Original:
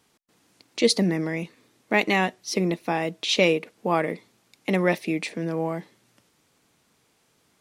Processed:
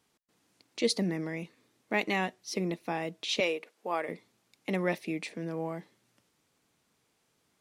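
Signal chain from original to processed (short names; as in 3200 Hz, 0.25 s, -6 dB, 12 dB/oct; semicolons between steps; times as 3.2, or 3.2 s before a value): 3.4–4.09 HPF 410 Hz 12 dB/oct; gain -8 dB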